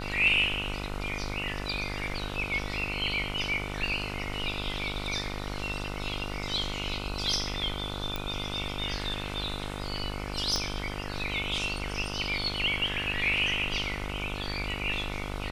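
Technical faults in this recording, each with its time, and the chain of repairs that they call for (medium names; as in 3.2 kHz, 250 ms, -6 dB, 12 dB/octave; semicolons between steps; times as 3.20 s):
buzz 50 Hz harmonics 30 -37 dBFS
8.16 s: pop -17 dBFS
10.56 s: pop -16 dBFS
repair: de-click; de-hum 50 Hz, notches 30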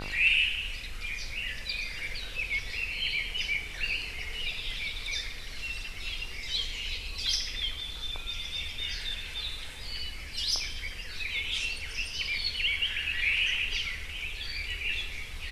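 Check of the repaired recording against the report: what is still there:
10.56 s: pop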